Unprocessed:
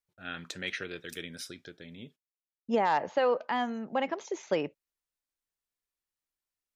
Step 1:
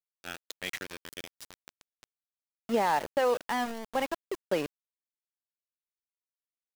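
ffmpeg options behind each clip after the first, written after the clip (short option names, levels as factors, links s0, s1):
-af "aeval=exprs='val(0)+0.000891*sin(2*PI*2900*n/s)':c=same,aeval=exprs='val(0)*gte(abs(val(0)),0.0211)':c=same"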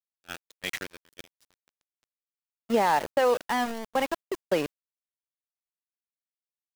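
-af "agate=range=0.0891:threshold=0.0112:ratio=16:detection=peak,volume=1.5"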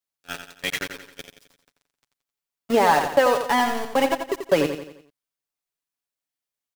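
-af "aecho=1:1:7.1:0.48,aecho=1:1:87|174|261|348|435:0.398|0.179|0.0806|0.0363|0.0163,volume=1.78"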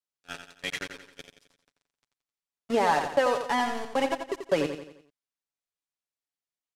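-af "lowpass=9200,volume=0.501"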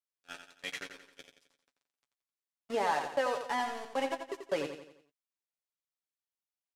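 -filter_complex "[0:a]lowshelf=f=200:g=-9,asplit=2[s0][s1];[s1]adelay=15,volume=0.282[s2];[s0][s2]amix=inputs=2:normalize=0,volume=0.473"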